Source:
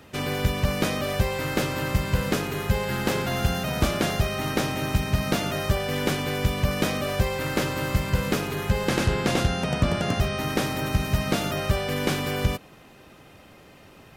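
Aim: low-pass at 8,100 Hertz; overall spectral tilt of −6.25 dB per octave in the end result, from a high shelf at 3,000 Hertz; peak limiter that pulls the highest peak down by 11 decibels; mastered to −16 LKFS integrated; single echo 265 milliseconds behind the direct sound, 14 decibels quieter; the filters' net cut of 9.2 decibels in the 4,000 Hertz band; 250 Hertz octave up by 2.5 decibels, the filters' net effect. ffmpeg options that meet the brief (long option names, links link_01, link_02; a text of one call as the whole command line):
ffmpeg -i in.wav -af "lowpass=8100,equalizer=frequency=250:width_type=o:gain=3.5,highshelf=frequency=3000:gain=-7.5,equalizer=frequency=4000:width_type=o:gain=-7,alimiter=limit=-20dB:level=0:latency=1,aecho=1:1:265:0.2,volume=13dB" out.wav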